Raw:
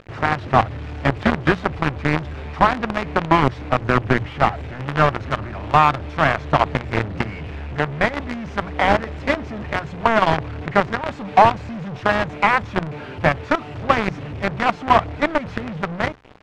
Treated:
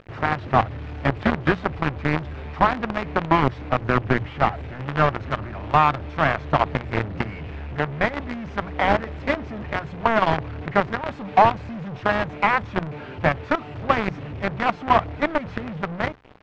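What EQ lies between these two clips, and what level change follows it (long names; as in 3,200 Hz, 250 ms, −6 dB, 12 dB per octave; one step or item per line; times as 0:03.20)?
high-frequency loss of the air 84 metres
−2.5 dB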